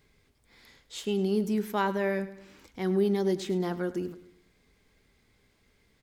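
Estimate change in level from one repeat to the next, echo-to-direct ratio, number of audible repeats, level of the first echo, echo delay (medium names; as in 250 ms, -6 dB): -6.5 dB, -15.0 dB, 3, -16.0 dB, 103 ms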